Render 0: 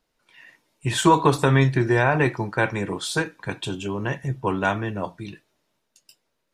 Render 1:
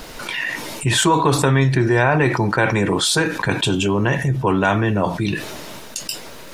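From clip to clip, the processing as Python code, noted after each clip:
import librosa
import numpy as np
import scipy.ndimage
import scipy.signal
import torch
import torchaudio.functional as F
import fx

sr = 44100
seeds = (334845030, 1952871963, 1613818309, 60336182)

y = fx.env_flatten(x, sr, amount_pct=70)
y = y * librosa.db_to_amplitude(-1.0)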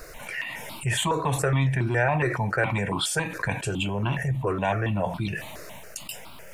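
y = fx.phaser_held(x, sr, hz=7.2, low_hz=870.0, high_hz=1800.0)
y = y * librosa.db_to_amplitude(-4.5)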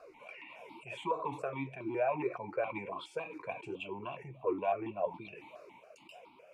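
y = fx.vowel_sweep(x, sr, vowels='a-u', hz=3.4)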